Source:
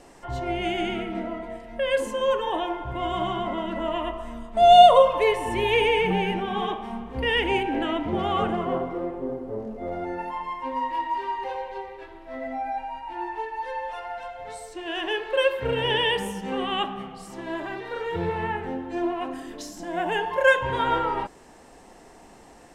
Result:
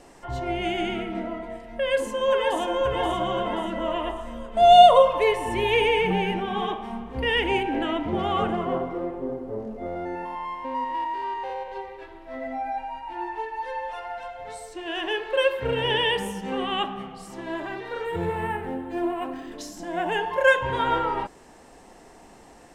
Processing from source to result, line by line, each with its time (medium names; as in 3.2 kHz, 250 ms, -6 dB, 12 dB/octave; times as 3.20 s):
1.74–2.61 s: echo throw 530 ms, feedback 50%, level -2.5 dB
9.86–11.72 s: spectrogram pixelated in time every 100 ms
18.05–19.52 s: decimation joined by straight lines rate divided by 4×